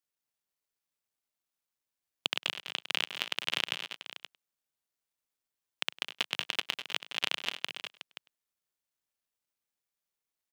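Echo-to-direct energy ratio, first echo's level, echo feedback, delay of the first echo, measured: -7.0 dB, -22.0 dB, no steady repeat, 0.101 s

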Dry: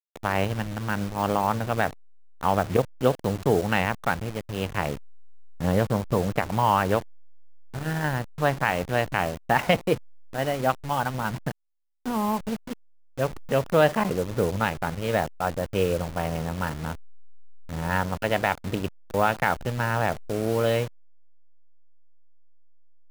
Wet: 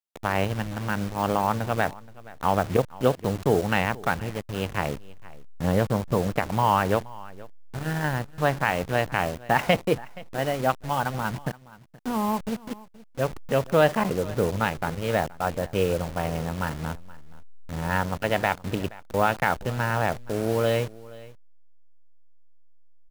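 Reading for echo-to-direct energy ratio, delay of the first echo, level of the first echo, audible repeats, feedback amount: -20.5 dB, 0.474 s, -20.5 dB, 1, no steady repeat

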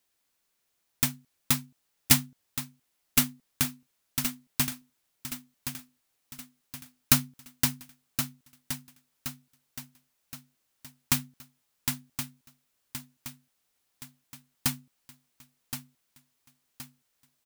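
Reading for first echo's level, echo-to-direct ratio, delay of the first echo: -9.0 dB, -8.0 dB, 1.071 s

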